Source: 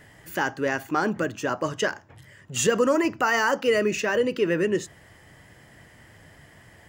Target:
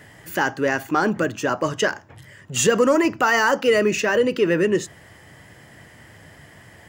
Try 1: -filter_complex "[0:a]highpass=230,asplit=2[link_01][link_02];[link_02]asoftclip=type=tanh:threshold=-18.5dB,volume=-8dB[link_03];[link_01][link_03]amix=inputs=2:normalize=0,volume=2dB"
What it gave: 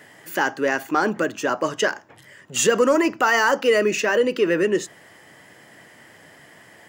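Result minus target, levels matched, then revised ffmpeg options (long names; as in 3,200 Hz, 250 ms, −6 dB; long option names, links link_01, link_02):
125 Hz band −6.5 dB
-filter_complex "[0:a]highpass=62,asplit=2[link_01][link_02];[link_02]asoftclip=type=tanh:threshold=-18.5dB,volume=-8dB[link_03];[link_01][link_03]amix=inputs=2:normalize=0,volume=2dB"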